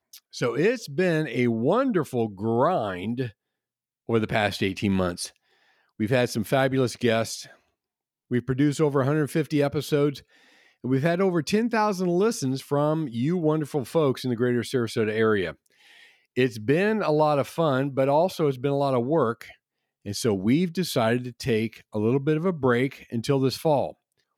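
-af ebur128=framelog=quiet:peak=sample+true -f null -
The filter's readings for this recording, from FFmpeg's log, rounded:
Integrated loudness:
  I:         -24.7 LUFS
  Threshold: -35.2 LUFS
Loudness range:
  LRA:         2.3 LU
  Threshold: -45.4 LUFS
  LRA low:   -26.7 LUFS
  LRA high:  -24.4 LUFS
Sample peak:
  Peak:       -6.9 dBFS
True peak:
  Peak:       -6.8 dBFS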